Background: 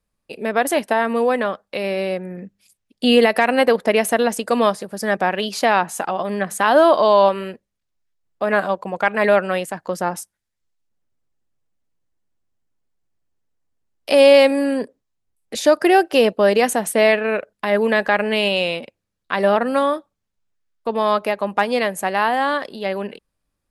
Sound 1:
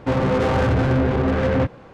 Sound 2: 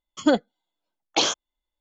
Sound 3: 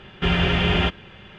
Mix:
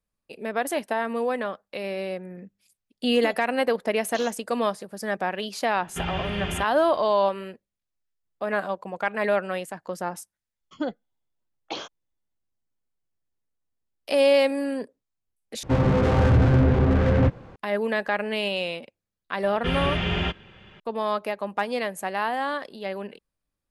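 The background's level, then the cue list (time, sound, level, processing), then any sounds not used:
background -8 dB
2.97 s: add 2 -17 dB
5.74 s: add 3 -10.5 dB
10.54 s: add 2 -9.5 dB + distance through air 180 m
15.63 s: replace with 1 -4 dB + bass shelf 170 Hz +9 dB
19.42 s: add 3 -5.5 dB

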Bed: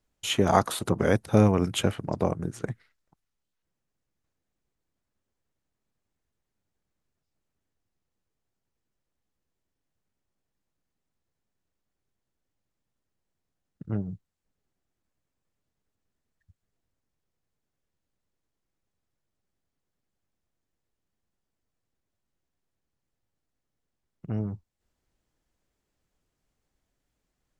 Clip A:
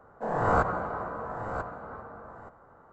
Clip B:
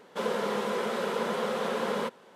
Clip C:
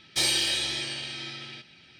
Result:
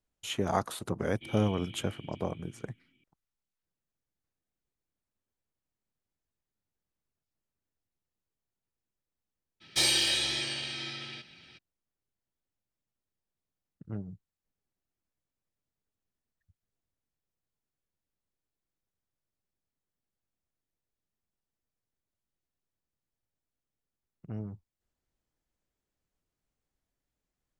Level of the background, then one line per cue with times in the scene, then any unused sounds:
bed -8 dB
1.05 s: add C -4 dB + cascade formant filter i
9.60 s: add C -1 dB, fades 0.02 s
not used: A, B

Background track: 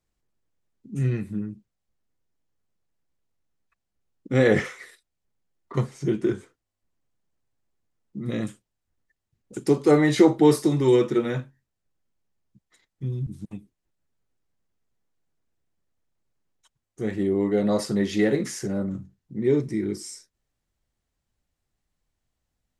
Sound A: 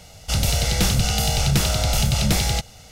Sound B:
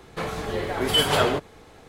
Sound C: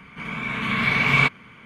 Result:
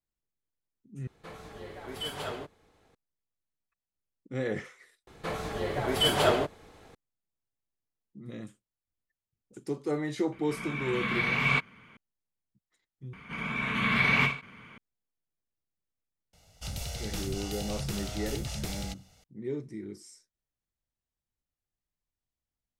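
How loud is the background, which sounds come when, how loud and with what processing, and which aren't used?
background track -13.5 dB
1.07 s: replace with B -16 dB
5.07 s: add B -5 dB + dynamic bell 640 Hz, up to +5 dB, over -38 dBFS, Q 4
10.32 s: add C -8 dB
13.13 s: replace with C -3.5 dB + endings held to a fixed fall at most 150 dB/s
16.33 s: add A -16.5 dB

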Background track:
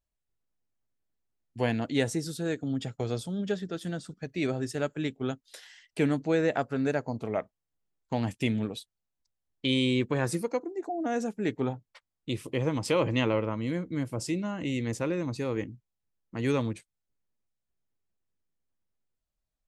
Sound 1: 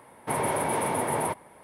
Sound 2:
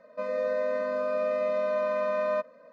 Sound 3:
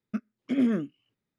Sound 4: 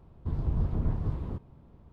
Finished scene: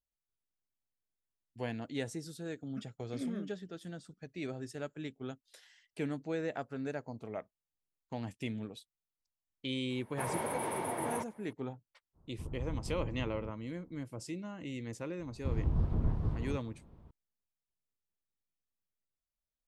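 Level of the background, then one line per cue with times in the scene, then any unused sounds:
background track -10.5 dB
2.63 s: add 3 -14.5 dB
9.90 s: add 1 -9.5 dB
12.13 s: add 4 -11.5 dB, fades 0.05 s + low-pass 1.5 kHz 24 dB/octave
15.19 s: add 4 -2.5 dB
not used: 2

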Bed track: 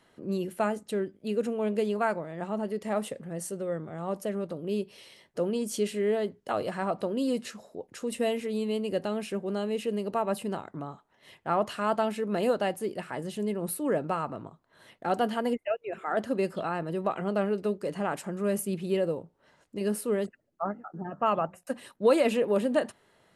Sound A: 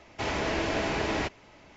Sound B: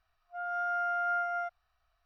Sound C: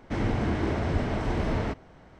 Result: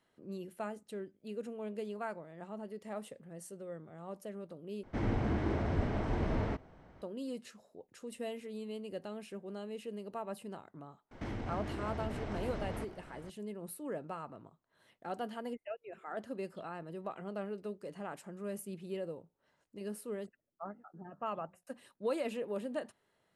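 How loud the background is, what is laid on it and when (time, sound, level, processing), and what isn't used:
bed track -12.5 dB
4.83 s: replace with C -5.5 dB + treble shelf 2.4 kHz -6.5 dB
11.11 s: add C -1.5 dB + compression, threshold -35 dBFS
not used: A, B

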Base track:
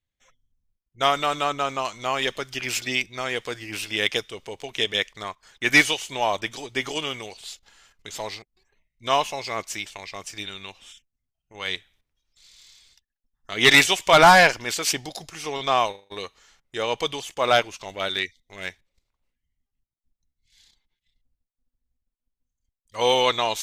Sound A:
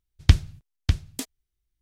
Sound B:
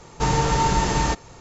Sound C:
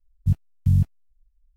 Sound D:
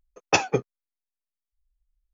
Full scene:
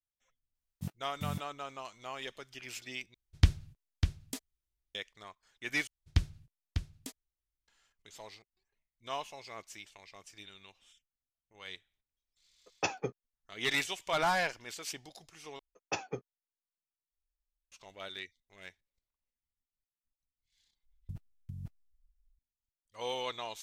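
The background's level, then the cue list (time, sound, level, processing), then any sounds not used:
base track -17 dB
0.55 s: add C + high-pass 360 Hz
3.14 s: replace with A -8 dB
5.87 s: replace with A -12.5 dB
12.50 s: add D -12.5 dB
15.59 s: replace with D -15.5 dB
20.83 s: add C -16.5 dB + compressor with a negative ratio -22 dBFS, ratio -0.5
not used: B

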